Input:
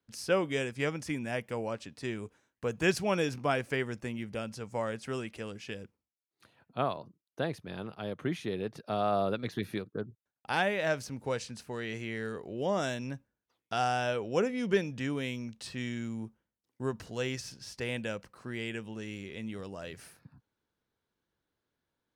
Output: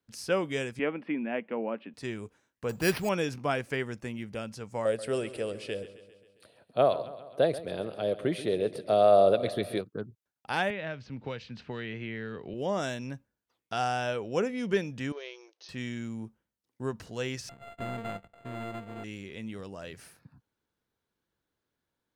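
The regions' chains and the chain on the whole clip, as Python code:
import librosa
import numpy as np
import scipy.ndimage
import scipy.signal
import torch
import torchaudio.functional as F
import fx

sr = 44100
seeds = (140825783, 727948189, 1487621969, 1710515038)

y = fx.chain(x, sr, fx.ellip_bandpass(low_hz=220.0, high_hz=2800.0, order=3, stop_db=40),
    fx.low_shelf(hz=420.0, db=7.0), at=(0.79, 1.94))
y = fx.chain(y, sr, fx.law_mismatch(coded='mu'),
    fx.high_shelf(hz=8600.0, db=-7.0),
    fx.resample_bad(factor=6, down='none', up='hold'), at=(2.69, 3.09))
y = fx.chain(y, sr, fx.curve_eq(hz=(240.0, 410.0, 600.0, 880.0, 1600.0, 3000.0, 4400.0, 6400.0, 9100.0, 14000.0), db=(0, 7, 13, -1, 0, 3, 6, -5, 12, -3)),
    fx.echo_feedback(ms=134, feedback_pct=59, wet_db=-15.0), at=(4.85, 9.81))
y = fx.chain(y, sr, fx.lowpass(hz=3600.0, slope=24),
    fx.peak_eq(hz=740.0, db=-6.0, octaves=2.9),
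    fx.band_squash(depth_pct=100), at=(10.7, 12.54))
y = fx.chain(y, sr, fx.law_mismatch(coded='A'),
    fx.brickwall_bandpass(low_hz=310.0, high_hz=6600.0),
    fx.peak_eq(hz=1600.0, db=-5.5, octaves=2.1), at=(15.12, 15.69))
y = fx.chain(y, sr, fx.sample_sort(block=64),
    fx.resample_linear(factor=8), at=(17.49, 19.04))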